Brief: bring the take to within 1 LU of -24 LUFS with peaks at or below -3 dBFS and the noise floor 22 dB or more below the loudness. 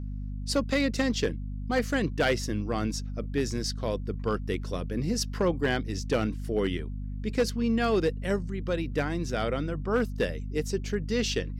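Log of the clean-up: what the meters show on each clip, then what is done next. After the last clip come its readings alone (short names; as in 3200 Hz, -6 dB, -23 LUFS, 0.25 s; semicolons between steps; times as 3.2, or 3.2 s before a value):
clipped 0.5%; flat tops at -18.0 dBFS; hum 50 Hz; harmonics up to 250 Hz; hum level -32 dBFS; loudness -29.5 LUFS; peak -18.0 dBFS; loudness target -24.0 LUFS
-> clip repair -18 dBFS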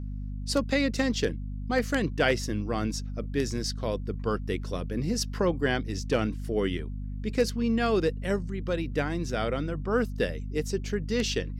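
clipped 0.0%; hum 50 Hz; harmonics up to 250 Hz; hum level -32 dBFS
-> de-hum 50 Hz, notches 5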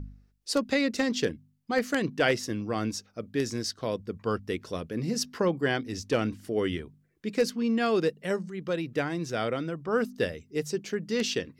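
hum none; loudness -30.0 LUFS; peak -9.5 dBFS; loudness target -24.0 LUFS
-> gain +6 dB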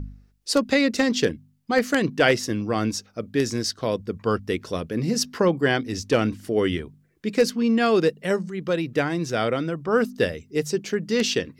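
loudness -24.0 LUFS; peak -3.5 dBFS; noise floor -60 dBFS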